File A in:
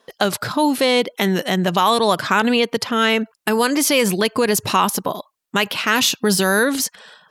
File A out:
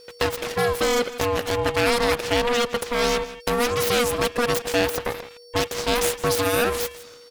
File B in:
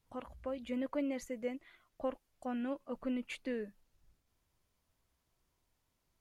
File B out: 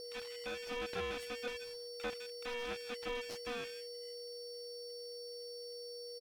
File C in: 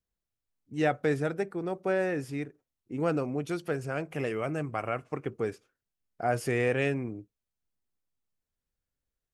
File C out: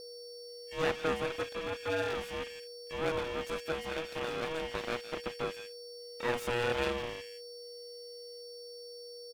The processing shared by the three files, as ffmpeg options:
-filter_complex "[0:a]asplit=2[s0][s1];[s1]adelay=163.3,volume=0.178,highshelf=f=4000:g=-3.67[s2];[s0][s2]amix=inputs=2:normalize=0,aeval=exprs='val(0)+0.0112*sin(2*PI*2500*n/s)':c=same,aeval=exprs='abs(val(0))':c=same,aeval=exprs='val(0)*sin(2*PI*480*n/s)':c=same,bandreject=f=460:w=12"

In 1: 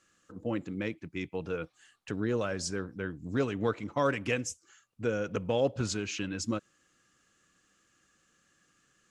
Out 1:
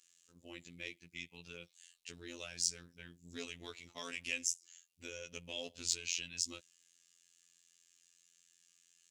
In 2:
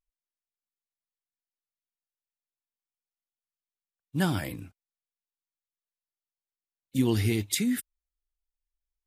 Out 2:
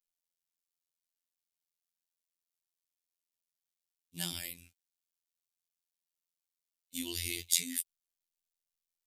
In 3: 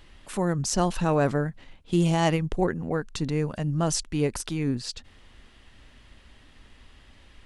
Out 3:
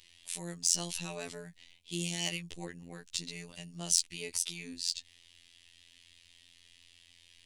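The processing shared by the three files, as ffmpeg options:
-af "aexciter=amount=5.3:drive=8.8:freq=2100,afftfilt=real='hypot(re,im)*cos(PI*b)':imag='0':win_size=2048:overlap=0.75,volume=0.168"

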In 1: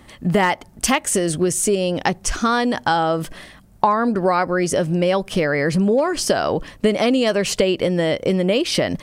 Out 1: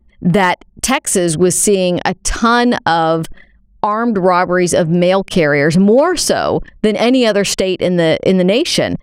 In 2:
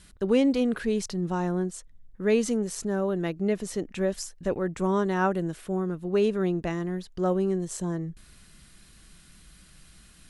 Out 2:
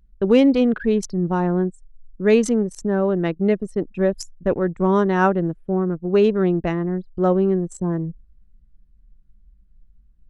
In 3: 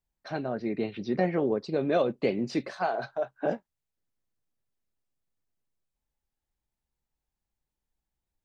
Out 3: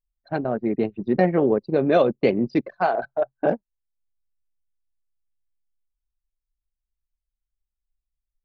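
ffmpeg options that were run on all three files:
-af "anlmdn=15.8,alimiter=limit=0.376:level=0:latency=1:release=476,volume=2.37"

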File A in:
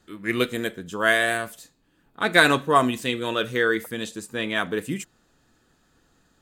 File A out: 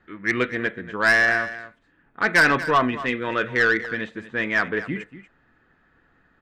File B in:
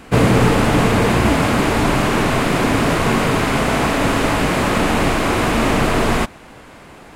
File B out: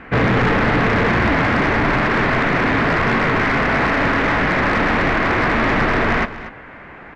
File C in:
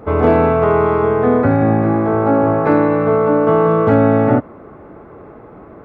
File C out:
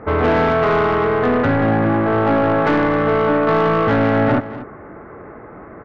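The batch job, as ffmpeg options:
-filter_complex "[0:a]lowpass=f=1900:t=q:w=2.7,aeval=exprs='(tanh(3.55*val(0)+0.1)-tanh(0.1))/3.55':c=same,asplit=2[s0][s1];[s1]aecho=0:1:238:0.188[s2];[s0][s2]amix=inputs=2:normalize=0"

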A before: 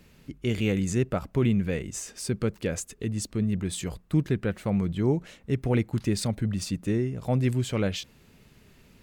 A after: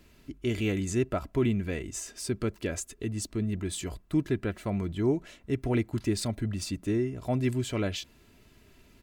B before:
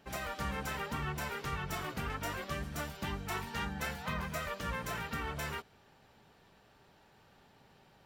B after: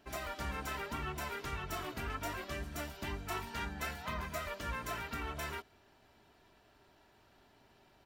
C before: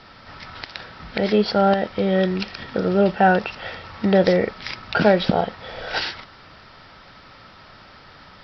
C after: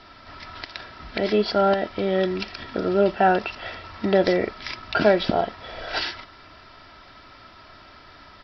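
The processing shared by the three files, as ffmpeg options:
-af "aecho=1:1:3:0.49,volume=0.75"

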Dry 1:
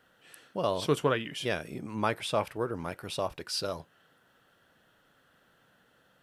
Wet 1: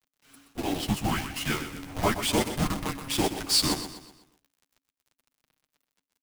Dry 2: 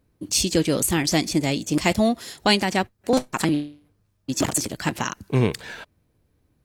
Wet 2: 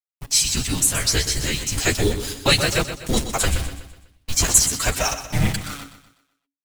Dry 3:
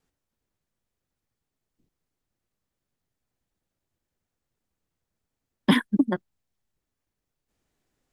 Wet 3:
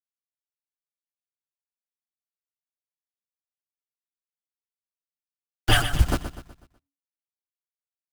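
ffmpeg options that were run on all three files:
-af "highshelf=f=2500:g=5.5,afftfilt=real='hypot(re,im)*cos(2*PI*random(0))':imag='hypot(re,im)*sin(2*PI*random(1))':win_size=512:overlap=0.75,acontrast=72,highpass=f=140:w=0.5412,highpass=f=140:w=1.3066,bandreject=f=50:t=h:w=6,bandreject=f=100:t=h:w=6,bandreject=f=150:t=h:w=6,bandreject=f=200:t=h:w=6,acrusher=bits=6:dc=4:mix=0:aa=0.000001,flanger=delay=6.5:depth=7.5:regen=4:speed=0.36:shape=sinusoidal,afreqshift=-280,aecho=1:1:124|248|372|496|620:0.282|0.124|0.0546|0.024|0.0106,dynaudnorm=f=170:g=21:m=2.24,asoftclip=type=tanh:threshold=0.501,adynamicequalizer=threshold=0.0178:dfrequency=8000:dqfactor=1:tfrequency=8000:tqfactor=1:attack=5:release=100:ratio=0.375:range=2.5:mode=boostabove:tftype=bell"

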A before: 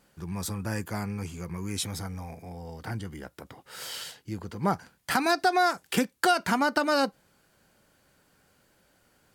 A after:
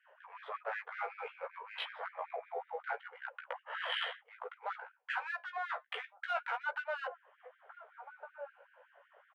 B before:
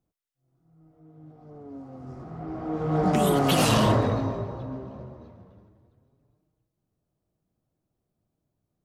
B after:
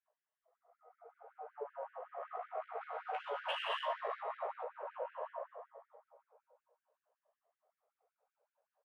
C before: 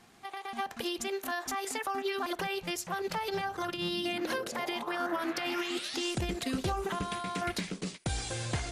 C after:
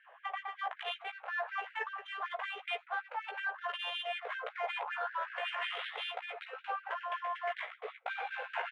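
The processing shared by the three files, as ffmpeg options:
-filter_complex "[0:a]afftfilt=real='re*pow(10,6/40*sin(2*PI*(1.3*log(max(b,1)*sr/1024/100)/log(2)-(0.57)*(pts-256)/sr)))':imag='im*pow(10,6/40*sin(2*PI*(1.3*log(max(b,1)*sr/1024/100)/log(2)-(0.57)*(pts-256)/sr)))':win_size=1024:overlap=0.75,highshelf=f=4300:t=q:w=3:g=-9,acrossover=split=480|4800[s0][s1][s2];[s2]asoftclip=type=hard:threshold=0.0141[s3];[s0][s1][s3]amix=inputs=3:normalize=0,asplit=2[s4][s5];[s5]adelay=1458,volume=0.0355,highshelf=f=4000:g=-32.8[s6];[s4][s6]amix=inputs=2:normalize=0,adynamicsmooth=sensitivity=2.5:basefreq=1100,acrossover=split=210 2800:gain=0.112 1 0.0708[s7][s8][s9];[s7][s8][s9]amix=inputs=3:normalize=0,flanger=delay=1:depth=6.4:regen=-78:speed=0.27:shape=sinusoidal,alimiter=level_in=1.19:limit=0.0631:level=0:latency=1:release=382,volume=0.841,asplit=2[s10][s11];[s11]adelay=16,volume=0.631[s12];[s10][s12]amix=inputs=2:normalize=0,areverse,acompressor=threshold=0.00447:ratio=20,areverse,afftfilt=real='re*gte(b*sr/1024,420*pow(1500/420,0.5+0.5*sin(2*PI*5.3*pts/sr)))':imag='im*gte(b*sr/1024,420*pow(1500/420,0.5+0.5*sin(2*PI*5.3*pts/sr)))':win_size=1024:overlap=0.75,volume=6.31"

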